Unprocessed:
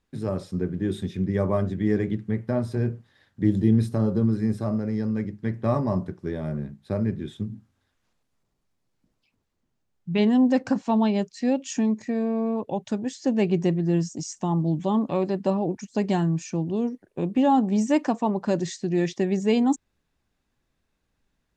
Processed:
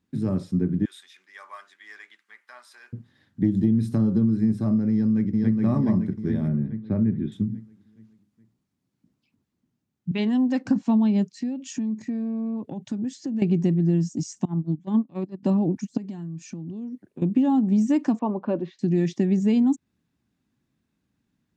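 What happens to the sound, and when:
0.85–2.93 s: high-pass 1.1 kHz 24 dB/octave
3.44–4.30 s: tape noise reduction on one side only encoder only
4.91–5.61 s: echo throw 420 ms, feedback 50%, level -1.5 dB
6.48–7.32 s: distance through air 280 m
10.11–10.66 s: frequency weighting A
11.37–13.42 s: compression 16:1, threshold -30 dBFS
14.45–15.43 s: gate -22 dBFS, range -24 dB
15.97–17.22 s: compression 20:1, threshold -36 dBFS
18.19–18.79 s: cabinet simulation 330–2700 Hz, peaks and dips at 540 Hz +6 dB, 1.1 kHz +4 dB, 1.9 kHz -10 dB
whole clip: high-pass 110 Hz; resonant low shelf 360 Hz +8.5 dB, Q 1.5; compression, threshold -14 dBFS; trim -3 dB

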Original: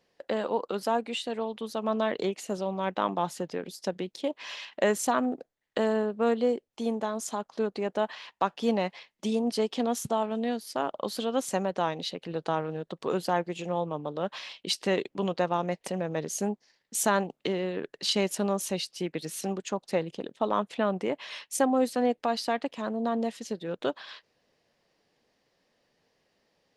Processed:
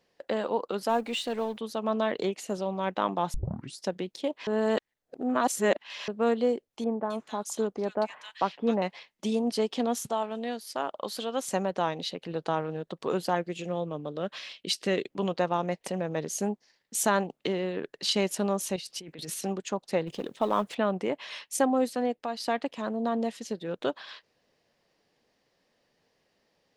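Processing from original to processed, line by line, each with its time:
0.89–1.58 s: companding laws mixed up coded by mu
3.34 s: tape start 0.45 s
4.47–6.08 s: reverse
6.84–8.82 s: bands offset in time lows, highs 260 ms, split 1.8 kHz
10.04–11.48 s: bass shelf 360 Hz -8 dB
13.35–15.10 s: peaking EQ 900 Hz -9 dB 0.58 oct
18.76–19.34 s: compressor with a negative ratio -40 dBFS
20.07–20.75 s: companding laws mixed up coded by mu
21.67–22.40 s: fade out, to -7 dB

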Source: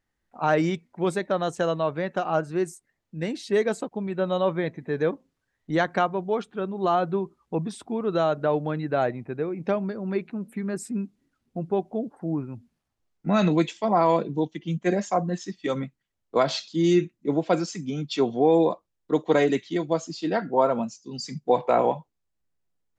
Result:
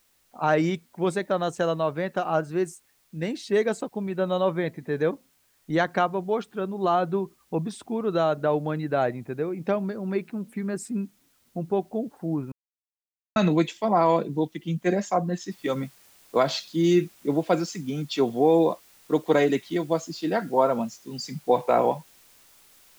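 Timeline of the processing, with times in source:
12.52–13.36 s: mute
15.51 s: noise floor step -66 dB -56 dB

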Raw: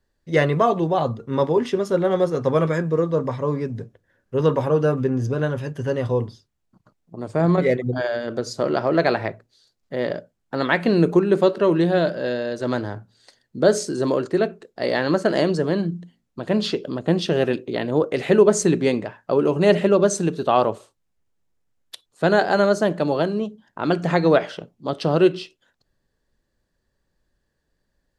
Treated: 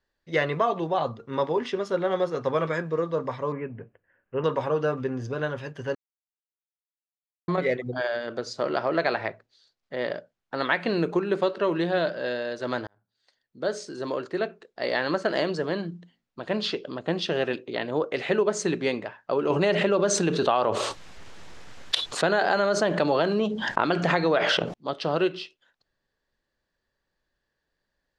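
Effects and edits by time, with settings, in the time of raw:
3.52–4.44 s: steep low-pass 3 kHz 96 dB/octave
5.95–7.48 s: mute
12.87–15.42 s: fade in equal-power
19.50–24.74 s: level flattener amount 70%
whole clip: low-pass 4.8 kHz 12 dB/octave; bass shelf 450 Hz -11.5 dB; compression, threshold -18 dBFS

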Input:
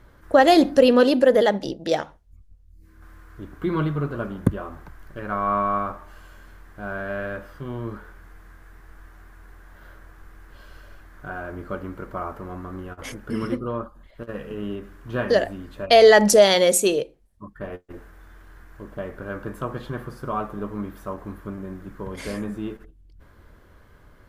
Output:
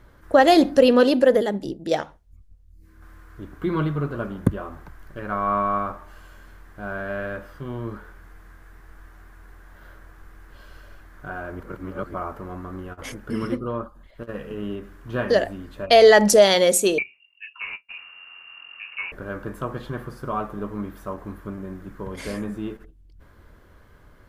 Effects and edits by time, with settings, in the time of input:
1.38–1.91 s: time-frequency box 440–6800 Hz -8 dB
11.60–12.14 s: reverse
16.98–19.12 s: frequency inversion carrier 2.8 kHz

